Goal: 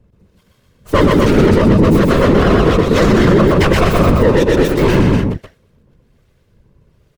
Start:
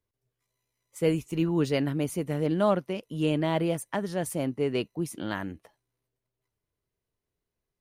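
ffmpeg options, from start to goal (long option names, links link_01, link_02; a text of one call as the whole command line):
ffmpeg -i in.wav -filter_complex "[0:a]lowpass=frequency=1100:poles=1,aecho=1:1:2.1:0.93,asplit=2[link_01][link_02];[link_02]acompressor=threshold=-37dB:ratio=6,volume=-1.5dB[link_03];[link_01][link_03]amix=inputs=2:normalize=0,asoftclip=type=tanh:threshold=-25dB,acrossover=split=490[link_04][link_05];[link_04]aeval=exprs='val(0)*(1-0.7/2+0.7/2*cos(2*PI*1.1*n/s))':channel_layout=same[link_06];[link_05]aeval=exprs='val(0)*(1-0.7/2-0.7/2*cos(2*PI*1.1*n/s))':channel_layout=same[link_07];[link_06][link_07]amix=inputs=2:normalize=0,acrossover=split=470[link_08][link_09];[link_09]aeval=exprs='abs(val(0))':channel_layout=same[link_10];[link_08][link_10]amix=inputs=2:normalize=0,afftfilt=real='hypot(re,im)*cos(2*PI*random(0))':imag='hypot(re,im)*sin(2*PI*random(1))':win_size=512:overlap=0.75,aecho=1:1:134.1|271.1:0.631|0.447,asetrate=48000,aresample=44100,alimiter=level_in=34dB:limit=-1dB:release=50:level=0:latency=1,volume=-1dB" out.wav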